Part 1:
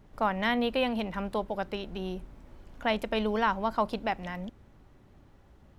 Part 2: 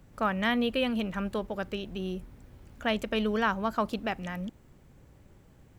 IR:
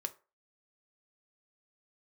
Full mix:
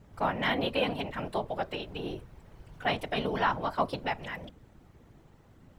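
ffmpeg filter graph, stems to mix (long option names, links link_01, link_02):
-filter_complex "[0:a]volume=2dB,asplit=3[link_01][link_02][link_03];[link_02]volume=-4.5dB[link_04];[1:a]asoftclip=type=tanh:threshold=-16.5dB,volume=-1,volume=-0.5dB[link_05];[link_03]apad=whole_len=255043[link_06];[link_05][link_06]sidechaincompress=threshold=-31dB:ratio=12:attack=26:release=190[link_07];[2:a]atrim=start_sample=2205[link_08];[link_04][link_08]afir=irnorm=-1:irlink=0[link_09];[link_01][link_07][link_09]amix=inputs=3:normalize=0,afftfilt=real='hypot(re,im)*cos(2*PI*random(0))':imag='hypot(re,im)*sin(2*PI*random(1))':win_size=512:overlap=0.75"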